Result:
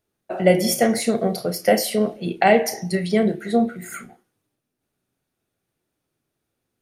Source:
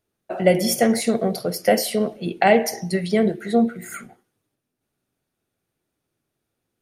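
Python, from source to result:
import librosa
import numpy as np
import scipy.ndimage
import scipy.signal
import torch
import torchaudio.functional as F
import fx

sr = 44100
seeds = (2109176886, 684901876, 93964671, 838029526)

y = fx.doubler(x, sr, ms=33.0, db=-11)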